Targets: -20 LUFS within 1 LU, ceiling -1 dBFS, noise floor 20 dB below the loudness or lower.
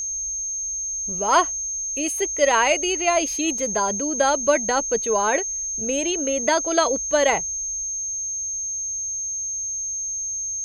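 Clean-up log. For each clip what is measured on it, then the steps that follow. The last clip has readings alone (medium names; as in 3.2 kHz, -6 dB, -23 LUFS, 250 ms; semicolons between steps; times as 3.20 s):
steady tone 6.4 kHz; tone level -25 dBFS; loudness -21.5 LUFS; peak level -5.5 dBFS; loudness target -20.0 LUFS
-> band-stop 6.4 kHz, Q 30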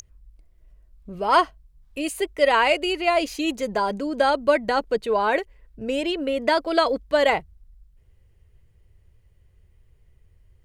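steady tone not found; loudness -22.5 LUFS; peak level -6.0 dBFS; loudness target -20.0 LUFS
-> trim +2.5 dB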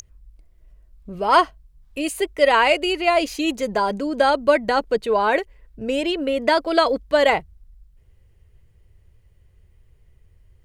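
loudness -20.0 LUFS; peak level -3.5 dBFS; noise floor -56 dBFS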